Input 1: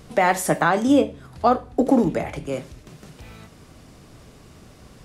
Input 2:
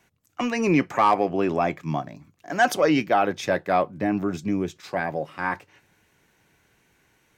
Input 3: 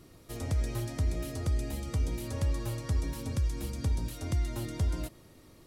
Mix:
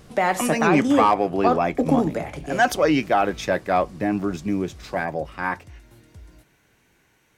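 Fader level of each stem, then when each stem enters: -2.5, +1.0, -15.5 dB; 0.00, 0.00, 1.35 s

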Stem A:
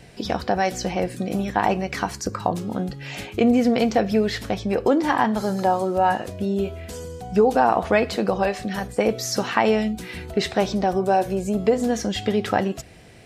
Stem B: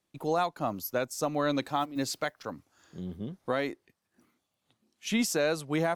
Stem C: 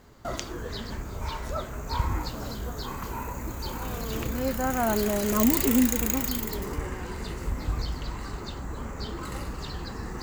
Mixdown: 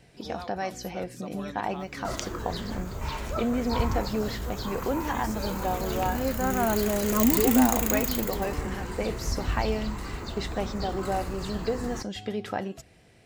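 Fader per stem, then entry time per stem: -10.0, -13.0, 0.0 dB; 0.00, 0.00, 1.80 s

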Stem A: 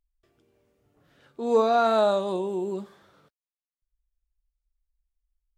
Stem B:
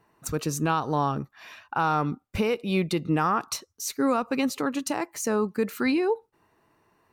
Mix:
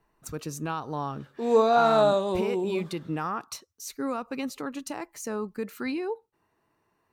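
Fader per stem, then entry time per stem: +0.5, -7.0 dB; 0.00, 0.00 s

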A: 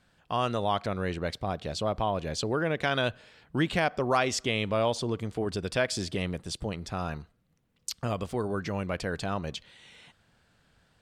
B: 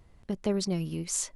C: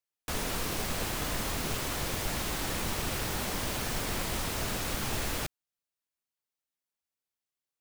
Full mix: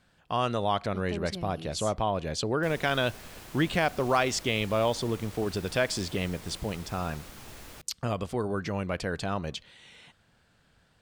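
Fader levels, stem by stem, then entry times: +0.5, -9.5, -13.5 dB; 0.00, 0.65, 2.35 s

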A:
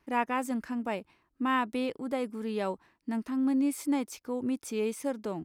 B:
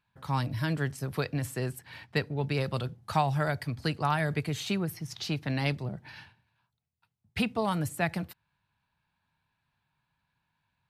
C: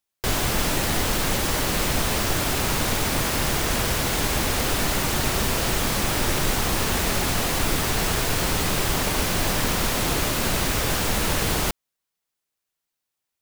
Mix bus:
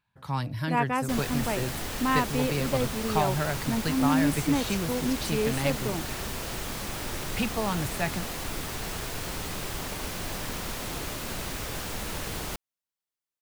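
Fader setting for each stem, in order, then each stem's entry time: +2.5, -0.5, -11.0 dB; 0.60, 0.00, 0.85 s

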